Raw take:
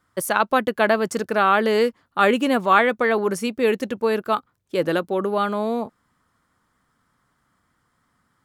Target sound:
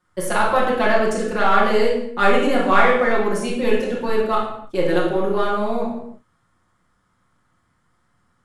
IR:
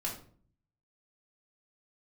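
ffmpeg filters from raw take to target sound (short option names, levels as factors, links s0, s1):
-filter_complex "[0:a]aeval=exprs='if(lt(val(0),0),0.708*val(0),val(0))':c=same[s0];[1:a]atrim=start_sample=2205,afade=t=out:st=0.22:d=0.01,atrim=end_sample=10143,asetrate=22050,aresample=44100[s1];[s0][s1]afir=irnorm=-1:irlink=0,volume=0.596"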